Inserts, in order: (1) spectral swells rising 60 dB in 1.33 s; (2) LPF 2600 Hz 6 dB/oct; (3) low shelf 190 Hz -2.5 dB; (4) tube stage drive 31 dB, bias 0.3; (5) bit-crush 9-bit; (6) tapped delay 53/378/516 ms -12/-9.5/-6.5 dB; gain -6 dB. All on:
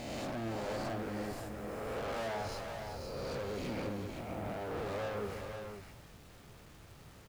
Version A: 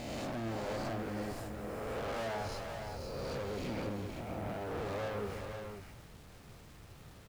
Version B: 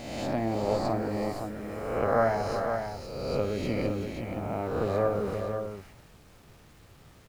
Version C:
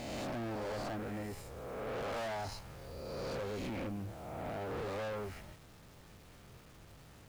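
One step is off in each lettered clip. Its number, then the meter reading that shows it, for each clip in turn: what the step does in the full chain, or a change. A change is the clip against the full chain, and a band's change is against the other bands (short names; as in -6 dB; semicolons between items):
3, 125 Hz band +1.5 dB; 4, crest factor change +8.0 dB; 6, echo-to-direct -4.0 dB to none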